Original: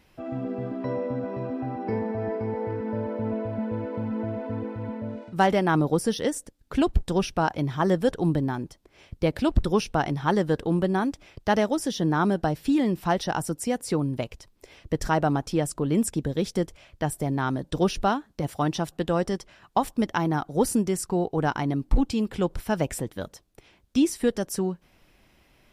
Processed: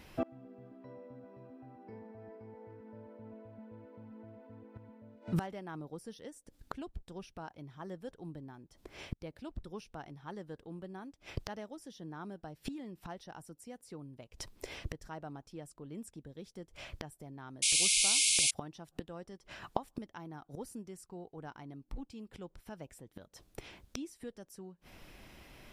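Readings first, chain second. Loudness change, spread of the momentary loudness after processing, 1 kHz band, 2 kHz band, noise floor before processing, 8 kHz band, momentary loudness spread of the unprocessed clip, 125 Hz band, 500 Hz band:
-9.5 dB, 17 LU, -20.0 dB, -10.5 dB, -62 dBFS, +2.5 dB, 8 LU, -18.0 dB, -20.5 dB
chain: flipped gate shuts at -27 dBFS, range -27 dB; painted sound noise, 17.62–18.51, 2100–11000 Hz -33 dBFS; gain +5 dB

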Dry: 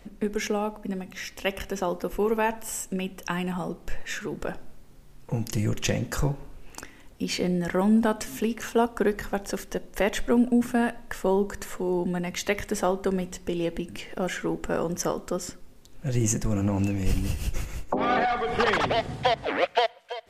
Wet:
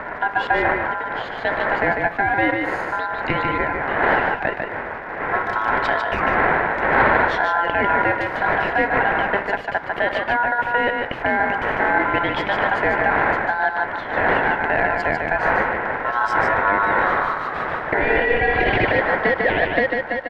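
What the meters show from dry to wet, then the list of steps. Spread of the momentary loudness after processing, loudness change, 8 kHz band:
6 LU, +8.0 dB, under -20 dB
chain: wind noise 400 Hz -28 dBFS; spectral gain 12–12.48, 760–2600 Hz +7 dB; HPF 68 Hz 6 dB/oct; bell 770 Hz +10.5 dB 2 oct; in parallel at -0.5 dB: negative-ratio compressor -20 dBFS, ratio -0.5; on the sum: ring modulator 1200 Hz; crackle 140/s -27 dBFS; soft clip -4 dBFS, distortion -23 dB; air absorption 360 m; on a send: echo 0.148 s -4 dB

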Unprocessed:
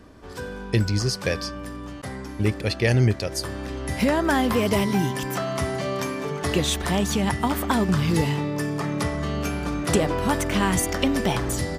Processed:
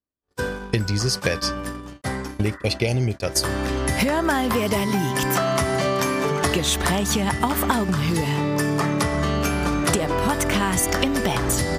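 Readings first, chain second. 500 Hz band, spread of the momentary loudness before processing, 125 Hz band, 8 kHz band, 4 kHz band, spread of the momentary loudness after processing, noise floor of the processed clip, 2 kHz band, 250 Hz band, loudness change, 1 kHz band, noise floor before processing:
+2.0 dB, 11 LU, +0.5 dB, +5.5 dB, +3.5 dB, 5 LU, -42 dBFS, +3.5 dB, +0.5 dB, +2.0 dB, +3.5 dB, -36 dBFS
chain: compressor 12:1, threshold -26 dBFS, peak gain reduction 12 dB; high shelf 5100 Hz +5 dB; gate -33 dBFS, range -54 dB; spectral repair 2.49–3.15, 920–2000 Hz both; dynamic EQ 1200 Hz, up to +3 dB, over -46 dBFS, Q 0.74; gain +7.5 dB

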